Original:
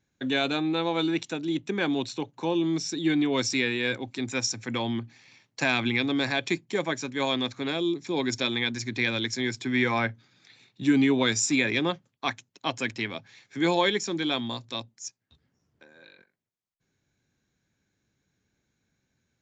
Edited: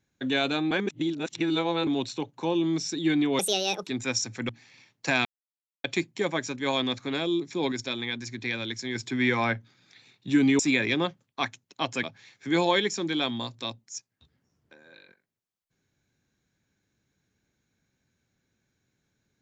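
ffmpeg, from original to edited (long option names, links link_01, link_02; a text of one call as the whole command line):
ffmpeg -i in.wav -filter_complex "[0:a]asplit=12[link_01][link_02][link_03][link_04][link_05][link_06][link_07][link_08][link_09][link_10][link_11][link_12];[link_01]atrim=end=0.712[link_13];[link_02]atrim=start=0.708:end=1.872,asetpts=PTS-STARTPTS,areverse[link_14];[link_03]atrim=start=1.868:end=3.394[link_15];[link_04]atrim=start=3.39:end=4.15,asetpts=PTS-STARTPTS,asetrate=69678,aresample=44100[link_16];[link_05]atrim=start=4.146:end=4.772[link_17];[link_06]atrim=start=5.028:end=5.79,asetpts=PTS-STARTPTS,afade=type=out:start_time=0.758:duration=0.004:curve=hsin[link_18];[link_07]atrim=start=5.79:end=6.38,asetpts=PTS-STARTPTS,volume=0[link_19];[link_08]atrim=start=6.38:end=8.262,asetpts=PTS-STARTPTS,afade=type=in:duration=0.004:curve=hsin[link_20];[link_09]atrim=start=8.258:end=9.492,asetpts=PTS-STARTPTS,volume=-4.5dB[link_21];[link_10]atrim=start=9.488:end=11.132[link_22];[link_11]atrim=start=11.438:end=12.882[link_23];[link_12]atrim=start=13.128[link_24];[link_13][link_14]acrossfade=duration=0.004:curve1=hsin:curve2=hsin[link_25];[link_25][link_15]acrossfade=duration=0.004:curve1=hsin:curve2=hsin[link_26];[link_26][link_16]acrossfade=duration=0.004:curve1=hsin:curve2=hsin[link_27];[link_27][link_17]acrossfade=duration=0.004:curve1=hsin:curve2=hsin[link_28];[link_18][link_19][link_20]concat=n=3:v=0:a=1[link_29];[link_28][link_29]acrossfade=duration=0.004:curve1=hsin:curve2=hsin[link_30];[link_30][link_21]acrossfade=duration=0.004:curve1=hsin:curve2=hsin[link_31];[link_31][link_22]acrossfade=duration=0.004:curve1=hsin:curve2=hsin[link_32];[link_32][link_23]acrossfade=duration=0.004:curve1=hsin:curve2=hsin[link_33];[link_33][link_24]acrossfade=duration=0.004:curve1=hsin:curve2=hsin" out.wav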